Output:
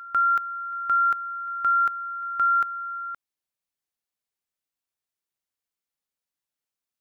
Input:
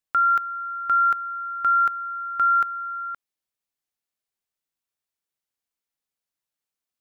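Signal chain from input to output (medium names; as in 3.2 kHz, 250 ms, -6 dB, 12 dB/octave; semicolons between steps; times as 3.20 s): pre-echo 169 ms -19.5 dB; trim -2 dB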